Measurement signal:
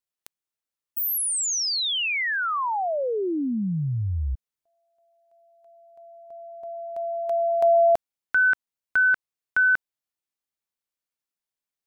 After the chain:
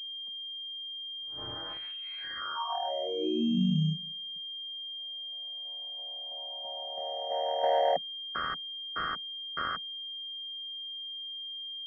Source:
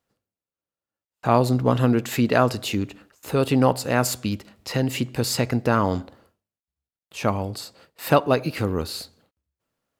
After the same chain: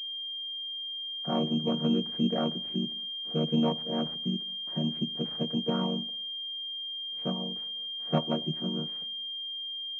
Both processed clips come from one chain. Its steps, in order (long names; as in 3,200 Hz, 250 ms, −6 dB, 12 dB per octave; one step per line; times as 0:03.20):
channel vocoder with a chord as carrier minor triad, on D#3
switching amplifier with a slow clock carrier 3,200 Hz
level −8 dB